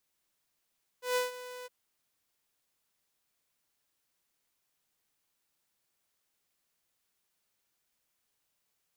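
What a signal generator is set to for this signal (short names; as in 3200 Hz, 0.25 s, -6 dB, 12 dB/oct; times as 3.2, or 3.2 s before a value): ADSR saw 498 Hz, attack 0.14 s, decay 0.148 s, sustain -16 dB, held 0.64 s, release 24 ms -23.5 dBFS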